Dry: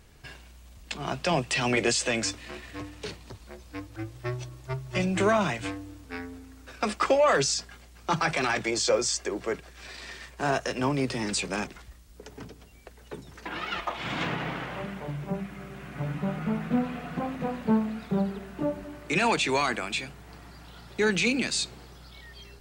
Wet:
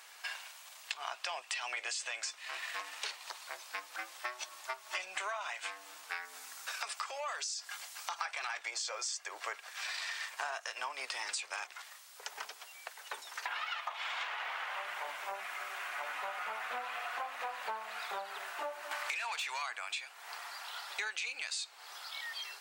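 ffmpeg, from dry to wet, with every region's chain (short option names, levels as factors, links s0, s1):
-filter_complex "[0:a]asettb=1/sr,asplit=3[s0][s1][s2];[s0]atrim=end=6.254[s3];[s1]atrim=start=6.25:end=8.19,asetpts=PTS-STARTPTS,afade=t=in:d=0.004:c=qsin,afade=t=out:st=1.936:d=0.004:c=qsin,bass=f=250:g=3,treble=f=4000:g=6,acompressor=threshold=0.0126:ratio=2.5:attack=3.2:release=140:knee=1:detection=peak[s4];[s2]atrim=start=8.186[s5];[s3][s4]acrossfade=d=0.004:c1=hsin:c2=qsin[s6];[s6][s5]acrossfade=d=0.004:c1=qsin:c2=hsin,asettb=1/sr,asplit=3[s7][s8][s9];[s7]atrim=end=18.914[s10];[s8]atrim=start=18.91:end=19.62,asetpts=PTS-STARTPTS,afade=t=in:d=0.004:c=qsin,afade=t=out:st=0.706:d=0.004:c=qsin,agate=range=0.447:threshold=0.0141:ratio=16:release=100:detection=peak,acompressor=threshold=0.01:ratio=4:attack=3.2:release=140:knee=1:detection=peak,asplit=2[s11][s12];[s12]highpass=f=720:p=1,volume=17.8,asoftclip=type=tanh:threshold=0.15[s13];[s11][s13]amix=inputs=2:normalize=0,lowpass=f=7800:p=1,volume=0.501[s14];[s9]atrim=start=19.616[s15];[s10][s14]acrossfade=d=0.004:c1=hsin:c2=qsin[s16];[s16][s15]acrossfade=d=0.004:c1=qsin:c2=hsin,highpass=f=800:w=0.5412,highpass=f=800:w=1.3066,acompressor=threshold=0.00631:ratio=10,volume=2.51"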